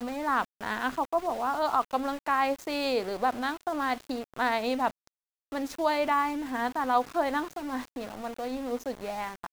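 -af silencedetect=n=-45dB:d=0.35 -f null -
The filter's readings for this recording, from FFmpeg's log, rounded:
silence_start: 5.07
silence_end: 5.52 | silence_duration: 0.45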